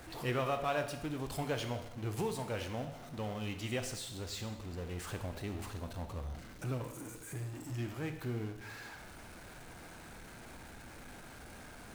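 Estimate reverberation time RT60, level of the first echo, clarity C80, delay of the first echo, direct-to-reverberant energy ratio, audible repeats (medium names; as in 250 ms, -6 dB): 0.95 s, no echo, 11.0 dB, no echo, 6.5 dB, no echo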